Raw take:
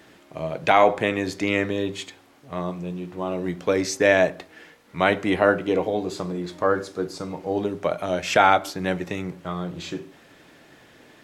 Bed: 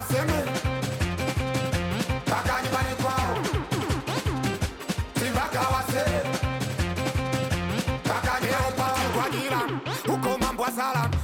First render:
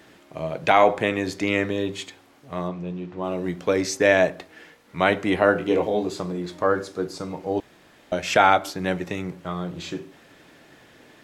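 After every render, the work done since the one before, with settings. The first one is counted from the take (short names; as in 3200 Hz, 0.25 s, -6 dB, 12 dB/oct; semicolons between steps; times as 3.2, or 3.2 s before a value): 2.68–3.24 air absorption 120 m; 5.53–6.09 doubler 24 ms -5.5 dB; 7.6–8.12 room tone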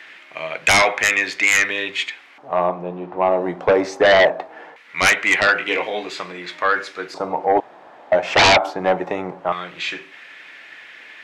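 LFO band-pass square 0.21 Hz 800–2200 Hz; sine folder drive 14 dB, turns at -8.5 dBFS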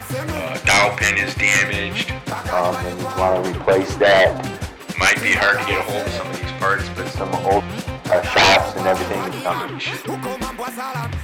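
add bed -0.5 dB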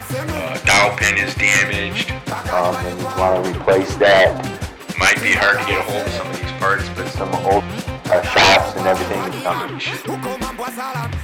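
gain +1.5 dB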